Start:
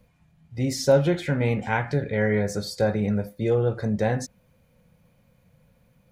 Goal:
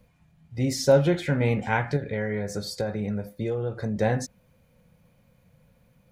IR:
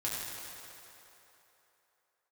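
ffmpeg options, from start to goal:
-filter_complex "[0:a]asettb=1/sr,asplit=3[s0][s1][s2];[s0]atrim=end=1.964[s3];[s1]atrim=start=1.96:end=3.96,asetpts=PTS-STARTPTS,afade=t=in:d=0.004:c=qsin,afade=t=out:st=1.996:d=0.004:c=qsin,acompressor=threshold=0.0501:ratio=4[s4];[s2]atrim=start=3.956[s5];[s3][s4]acrossfade=d=0.004:c1=hsin:c2=qsin[s6];[s6][s5]acrossfade=d=0.004:c1=qsin:c2=hsin"

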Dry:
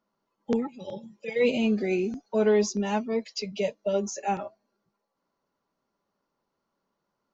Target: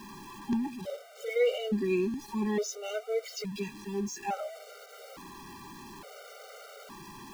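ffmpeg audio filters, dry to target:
-af "aeval=exprs='val(0)+0.5*0.0168*sgn(val(0))':c=same,afftfilt=real='re*gt(sin(2*PI*0.58*pts/sr)*(1-2*mod(floor(b*sr/1024/390),2)),0)':imag='im*gt(sin(2*PI*0.58*pts/sr)*(1-2*mod(floor(b*sr/1024/390),2)),0)':win_size=1024:overlap=0.75,volume=0.75"

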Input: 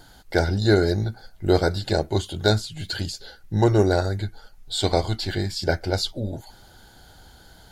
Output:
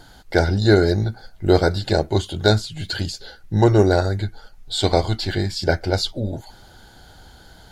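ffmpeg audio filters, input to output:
-af "highshelf=f=9300:g=-7,volume=1.5"

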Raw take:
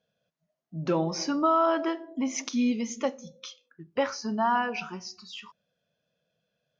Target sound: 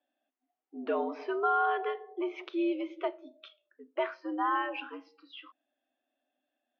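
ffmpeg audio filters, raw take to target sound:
-filter_complex "[0:a]highpass=f=150:t=q:w=0.5412,highpass=f=150:t=q:w=1.307,lowpass=f=3300:t=q:w=0.5176,lowpass=f=3300:t=q:w=0.7071,lowpass=f=3300:t=q:w=1.932,afreqshift=97,asettb=1/sr,asplit=3[s0][s1][s2];[s0]atrim=end=3.484[s3];[s1]atrim=start=3.48:end=4,asetpts=PTS-STARTPTS,afade=t=in:d=0.004:c=qsin,afade=t=out:st=0.516:d=0.004:c=qsin,highshelf=f=2600:g=-9[s4];[s2]atrim=start=3.996[s5];[s3][s4]acrossfade=d=0.004:c1=hsin:c2=qsin[s6];[s6][s5]acrossfade=d=0.004:c1=qsin:c2=hsin,volume=0.596"

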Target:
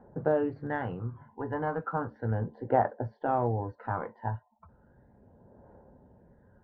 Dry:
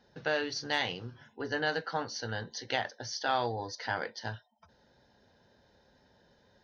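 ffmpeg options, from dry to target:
-af "lowpass=f=1200:w=0.5412,lowpass=f=1200:w=1.3066,aphaser=in_gain=1:out_gain=1:delay=1.1:decay=0.57:speed=0.35:type=triangular,volume=1.68"

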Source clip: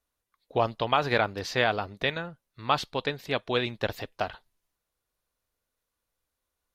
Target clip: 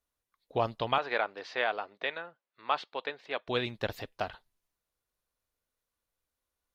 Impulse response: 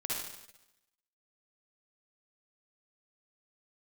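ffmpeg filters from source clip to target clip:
-filter_complex "[0:a]asettb=1/sr,asplit=3[s0][s1][s2];[s0]atrim=end=0.984[s3];[s1]atrim=start=0.98:end=3.48,asetpts=PTS-STARTPTS,afade=t=in:d=0.004:c=qsin,afade=t=out:st=2.496:d=0.004:c=qsin,highpass=470,lowpass=3200[s4];[s2]atrim=start=3.476[s5];[s3][s4]acrossfade=d=0.004:c1=hsin:c2=qsin[s6];[s6][s5]acrossfade=d=0.004:c1=qsin:c2=hsin,volume=0.631"

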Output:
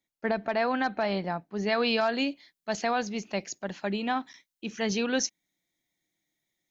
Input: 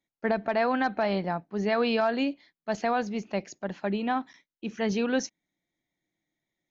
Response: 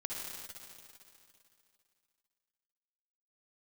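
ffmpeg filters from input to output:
-af "asetnsamples=n=441:p=0,asendcmd='1.67 highshelf g 11.5',highshelf=f=2800:g=5.5,volume=0.794"

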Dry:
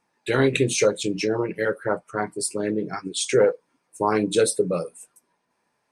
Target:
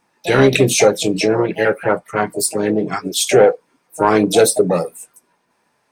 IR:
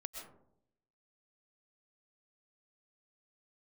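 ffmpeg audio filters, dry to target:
-filter_complex "[0:a]asplit=2[s0][s1];[s1]asetrate=66075,aresample=44100,atempo=0.66742,volume=0.282[s2];[s0][s2]amix=inputs=2:normalize=0,acontrast=54,volume=1.26"

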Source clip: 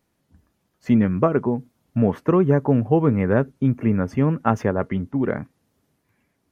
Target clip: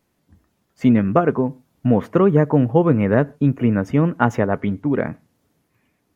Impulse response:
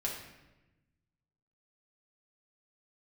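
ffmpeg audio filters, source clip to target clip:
-filter_complex "[0:a]asetrate=46746,aresample=44100,asplit=2[s0][s1];[1:a]atrim=start_sample=2205,atrim=end_sample=6615[s2];[s1][s2]afir=irnorm=-1:irlink=0,volume=0.0631[s3];[s0][s3]amix=inputs=2:normalize=0,volume=1.26"

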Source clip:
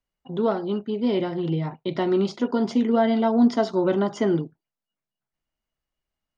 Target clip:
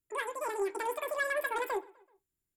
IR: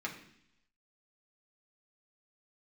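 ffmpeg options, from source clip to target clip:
-filter_complex "[0:a]equalizer=f=125:t=o:w=1:g=7,equalizer=f=250:t=o:w=1:g=-11,equalizer=f=500:t=o:w=1:g=-5,equalizer=f=1000:t=o:w=1:g=-4,equalizer=f=2000:t=o:w=1:g=-12,equalizer=f=4000:t=o:w=1:g=5,asetrate=109368,aresample=44100,asoftclip=type=tanh:threshold=0.106,acrossover=split=3600[s0][s1];[s1]acompressor=threshold=0.00316:ratio=4:attack=1:release=60[s2];[s0][s2]amix=inputs=2:normalize=0,highshelf=f=5200:g=10.5,asplit=2[s3][s4];[s4]adelay=127,lowpass=f=4900:p=1,volume=0.0708,asplit=2[s5][s6];[s6]adelay=127,lowpass=f=4900:p=1,volume=0.51,asplit=2[s7][s8];[s8]adelay=127,lowpass=f=4900:p=1,volume=0.51[s9];[s3][s5][s7][s9]amix=inputs=4:normalize=0,asplit=2[s10][s11];[1:a]atrim=start_sample=2205,atrim=end_sample=3528[s12];[s11][s12]afir=irnorm=-1:irlink=0,volume=0.422[s13];[s10][s13]amix=inputs=2:normalize=0,volume=0.501"

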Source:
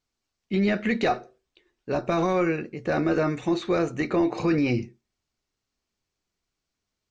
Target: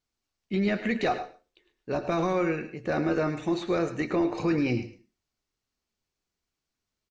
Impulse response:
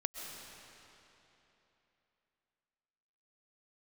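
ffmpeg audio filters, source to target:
-filter_complex "[0:a]aecho=1:1:106:0.237,asplit=2[s0][s1];[1:a]atrim=start_sample=2205,afade=t=out:st=0.26:d=0.01,atrim=end_sample=11907,asetrate=61740,aresample=44100[s2];[s1][s2]afir=irnorm=-1:irlink=0,volume=0.944[s3];[s0][s3]amix=inputs=2:normalize=0,volume=0.447"

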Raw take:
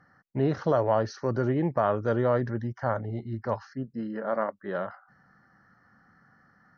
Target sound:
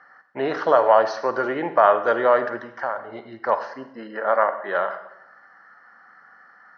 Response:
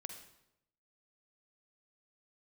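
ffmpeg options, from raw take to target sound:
-filter_complex "[0:a]asettb=1/sr,asplit=3[s0][s1][s2];[s0]atrim=end=2.644[s3];[s1]atrim=start=2.64:end=3.12,asetpts=PTS-STARTPTS,afade=t=in:d=0.004:c=qsin,afade=t=out:st=0.476:d=0.004:c=qsin,acompressor=threshold=0.0224:ratio=3[s4];[s2]atrim=start=3.116[s5];[s3][s4]acrossfade=d=0.004:c1=hsin:c2=qsin[s6];[s6][s5]acrossfade=d=0.004:c1=qsin:c2=hsin,highpass=700,lowpass=3500,asplit=2[s7][s8];[1:a]atrim=start_sample=2205[s9];[s8][s9]afir=irnorm=-1:irlink=0,volume=2.37[s10];[s7][s10]amix=inputs=2:normalize=0,volume=1.78"

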